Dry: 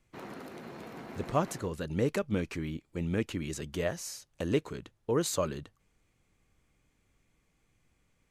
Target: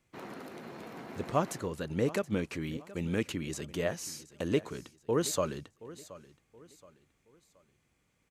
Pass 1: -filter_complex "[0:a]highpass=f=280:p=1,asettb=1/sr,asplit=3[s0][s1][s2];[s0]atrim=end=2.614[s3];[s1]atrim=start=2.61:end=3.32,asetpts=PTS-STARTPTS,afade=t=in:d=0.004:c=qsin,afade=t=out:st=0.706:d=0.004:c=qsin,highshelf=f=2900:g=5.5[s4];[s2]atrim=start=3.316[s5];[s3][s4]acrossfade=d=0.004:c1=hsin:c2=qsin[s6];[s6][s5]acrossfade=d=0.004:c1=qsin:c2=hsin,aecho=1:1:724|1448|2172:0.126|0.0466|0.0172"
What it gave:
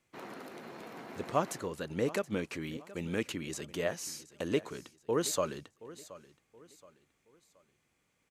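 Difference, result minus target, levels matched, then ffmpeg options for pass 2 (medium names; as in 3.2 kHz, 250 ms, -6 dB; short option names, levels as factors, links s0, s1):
125 Hz band -3.5 dB
-filter_complex "[0:a]highpass=f=98:p=1,asettb=1/sr,asplit=3[s0][s1][s2];[s0]atrim=end=2.614[s3];[s1]atrim=start=2.61:end=3.32,asetpts=PTS-STARTPTS,afade=t=in:d=0.004:c=qsin,afade=t=out:st=0.706:d=0.004:c=qsin,highshelf=f=2900:g=5.5[s4];[s2]atrim=start=3.316[s5];[s3][s4]acrossfade=d=0.004:c1=hsin:c2=qsin[s6];[s6][s5]acrossfade=d=0.004:c1=qsin:c2=hsin,aecho=1:1:724|1448|2172:0.126|0.0466|0.0172"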